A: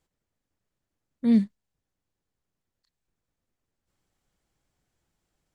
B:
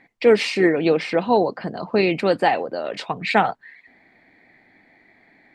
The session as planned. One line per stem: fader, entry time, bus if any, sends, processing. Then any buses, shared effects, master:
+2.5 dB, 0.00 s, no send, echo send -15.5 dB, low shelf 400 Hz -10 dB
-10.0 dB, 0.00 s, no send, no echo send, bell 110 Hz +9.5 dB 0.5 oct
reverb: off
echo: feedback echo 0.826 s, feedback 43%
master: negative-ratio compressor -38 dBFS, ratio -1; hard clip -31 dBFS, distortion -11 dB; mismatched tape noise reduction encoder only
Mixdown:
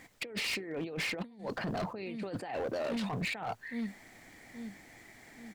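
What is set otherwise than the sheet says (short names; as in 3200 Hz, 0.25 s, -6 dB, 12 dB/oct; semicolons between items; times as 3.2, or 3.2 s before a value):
stem A +2.5 dB -> +11.5 dB; master: missing mismatched tape noise reduction encoder only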